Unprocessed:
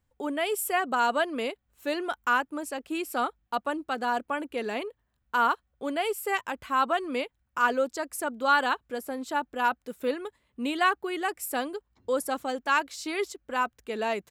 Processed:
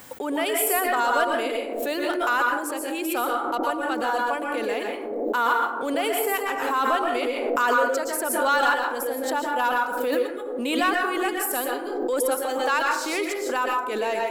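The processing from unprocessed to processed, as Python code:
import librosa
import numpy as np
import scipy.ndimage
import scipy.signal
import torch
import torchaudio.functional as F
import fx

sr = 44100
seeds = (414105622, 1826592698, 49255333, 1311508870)

p1 = scipy.signal.sosfilt(scipy.signal.butter(2, 290.0, 'highpass', fs=sr, output='sos'), x)
p2 = fx.high_shelf(p1, sr, hz=10000.0, db=10.0)
p3 = fx.leveller(p2, sr, passes=1)
p4 = p3 + fx.echo_bbd(p3, sr, ms=227, stages=1024, feedback_pct=80, wet_db=-14.5, dry=0)
p5 = fx.rev_plate(p4, sr, seeds[0], rt60_s=0.56, hf_ratio=0.5, predelay_ms=105, drr_db=0.5)
p6 = fx.pre_swell(p5, sr, db_per_s=30.0)
y = p6 * librosa.db_to_amplitude(-2.5)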